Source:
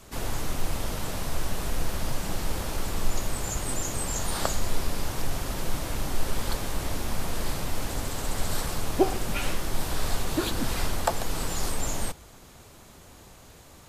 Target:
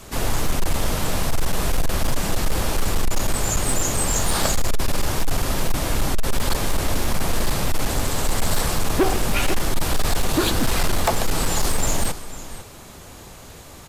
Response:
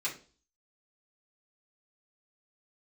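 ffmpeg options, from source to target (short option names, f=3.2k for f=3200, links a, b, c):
-filter_complex "[0:a]asplit=2[a][b];[b]aecho=0:1:500:0.168[c];[a][c]amix=inputs=2:normalize=0,volume=21.5dB,asoftclip=hard,volume=-21.5dB,asplit=2[d][e];[1:a]atrim=start_sample=2205[f];[e][f]afir=irnorm=-1:irlink=0,volume=-22.5dB[g];[d][g]amix=inputs=2:normalize=0,volume=8.5dB"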